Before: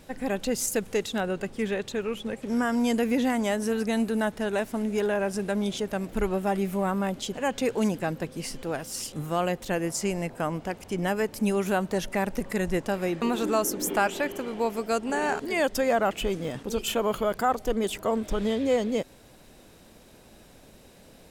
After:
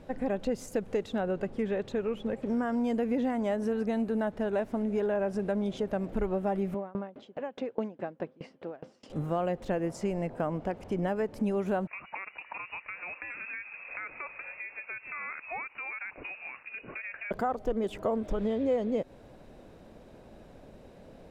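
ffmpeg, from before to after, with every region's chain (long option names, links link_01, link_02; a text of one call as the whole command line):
ffmpeg -i in.wav -filter_complex "[0:a]asettb=1/sr,asplit=3[link_01][link_02][link_03];[link_01]atrim=end=6.744[link_04];[link_02]atrim=start=6.74:end=9.1,asetpts=PTS-STARTPTS,afade=type=in:duration=0.004:curve=qsin,afade=type=out:start_time=2.356:duration=0.004:curve=qsin,highpass=200,lowpass=3800,aeval=exprs='val(0)*pow(10,-28*if(lt(mod(4.8*n/s,1),2*abs(4.8)/1000),1-mod(4.8*n/s,1)/(2*abs(4.8)/1000),(mod(4.8*n/s,1)-2*abs(4.8)/1000)/(1-2*abs(4.8)/1000))/20)':channel_layout=same[link_05];[link_03]atrim=start=9.096[link_06];[link_04][link_05]acrossfade=duration=0.004:curve1=hsin:curve2=qsin[link_07];[link_07][link_06]acrossfade=duration=0.004:curve1=qsin:curve2=hsin,asettb=1/sr,asplit=3[link_08][link_09][link_10];[link_08]atrim=end=11.874[link_11];[link_09]atrim=start=11.87:end=17.31,asetpts=PTS-STARTPTS,afade=type=in:duration=0.004:curve=qsin,afade=type=out:start_time=5.436:duration=0.004:curve=qsin,acrossover=split=360 2300:gain=0.112 1 0.224[link_12][link_13][link_14];[link_12][link_13][link_14]amix=inputs=3:normalize=0,acompressor=threshold=-29dB:ratio=6:attack=3.2:release=140:knee=1:detection=peak,lowpass=frequency=2500:width_type=q:width=0.5098,lowpass=frequency=2500:width_type=q:width=0.6013,lowpass=frequency=2500:width_type=q:width=0.9,lowpass=frequency=2500:width_type=q:width=2.563,afreqshift=-2900[link_15];[link_10]atrim=start=17.306[link_16];[link_11][link_15]acrossfade=duration=0.004:curve1=hsin:curve2=qsin[link_17];[link_17][link_16]acrossfade=duration=0.004:curve1=qsin:curve2=hsin,acompressor=threshold=-30dB:ratio=2.5,lowpass=frequency=1100:poles=1,equalizer=frequency=590:width_type=o:width=0.69:gain=3.5,volume=1.5dB" out.wav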